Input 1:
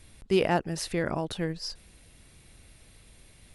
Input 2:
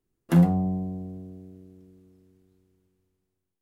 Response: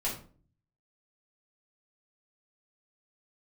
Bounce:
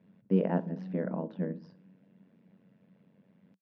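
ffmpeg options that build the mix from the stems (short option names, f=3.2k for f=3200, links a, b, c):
-filter_complex "[0:a]lowpass=1k,tremolo=f=93:d=0.974,volume=2dB,asplit=3[a][b][c];[b]volume=-18dB[d];[1:a]adelay=250,volume=-17dB[e];[c]apad=whole_len=170374[f];[e][f]sidechaincompress=threshold=-41dB:ratio=3:attack=43:release=266[g];[2:a]atrim=start_sample=2205[h];[d][h]afir=irnorm=-1:irlink=0[i];[a][g][i]amix=inputs=3:normalize=0,highpass=f=180:w=0.5412,highpass=f=180:w=1.3066,equalizer=f=190:t=q:w=4:g=10,equalizer=f=360:t=q:w=4:g=-8,equalizer=f=750:t=q:w=4:g=-9,equalizer=f=1.2k:t=q:w=4:g=-8,equalizer=f=2.2k:t=q:w=4:g=-4,equalizer=f=4.1k:t=q:w=4:g=-5,lowpass=f=5.4k:w=0.5412,lowpass=f=5.4k:w=1.3066"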